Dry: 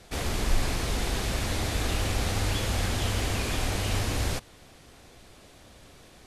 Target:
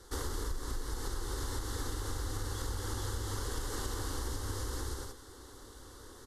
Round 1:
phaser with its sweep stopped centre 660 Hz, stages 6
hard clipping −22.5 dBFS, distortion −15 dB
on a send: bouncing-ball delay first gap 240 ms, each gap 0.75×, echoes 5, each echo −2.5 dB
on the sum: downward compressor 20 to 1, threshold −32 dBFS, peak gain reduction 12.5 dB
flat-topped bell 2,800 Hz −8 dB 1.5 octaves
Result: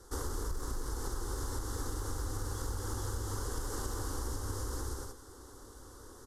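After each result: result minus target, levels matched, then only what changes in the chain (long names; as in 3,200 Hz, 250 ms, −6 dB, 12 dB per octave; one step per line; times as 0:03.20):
hard clipping: distortion +17 dB; 2,000 Hz band −2.5 dB
change: hard clipping −16 dBFS, distortion −33 dB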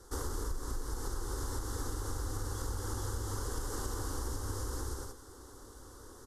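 2,000 Hz band −2.5 dB
remove: flat-topped bell 2,800 Hz −8 dB 1.5 octaves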